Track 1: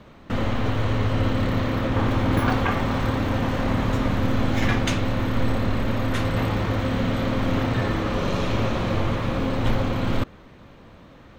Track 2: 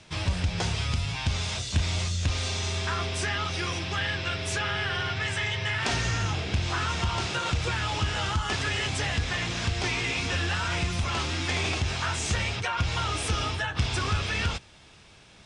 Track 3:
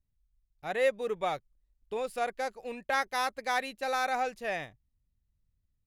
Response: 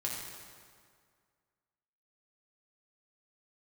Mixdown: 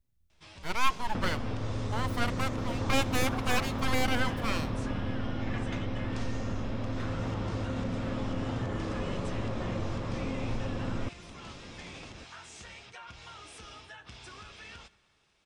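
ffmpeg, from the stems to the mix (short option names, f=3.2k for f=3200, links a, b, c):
-filter_complex "[0:a]lowpass=f=1.2k:p=1,acompressor=threshold=-33dB:ratio=2.5,adelay=850,volume=-1dB[a];[1:a]equalizer=f=94:t=o:w=1.4:g=-11,adelay=300,volume=-18.5dB,asplit=2[b][c];[c]volume=-17.5dB[d];[2:a]aeval=exprs='abs(val(0))':c=same,volume=3dB,asplit=2[e][f];[f]volume=-19.5dB[g];[3:a]atrim=start_sample=2205[h];[d][g]amix=inputs=2:normalize=0[i];[i][h]afir=irnorm=-1:irlink=0[j];[a][b][e][j]amix=inputs=4:normalize=0"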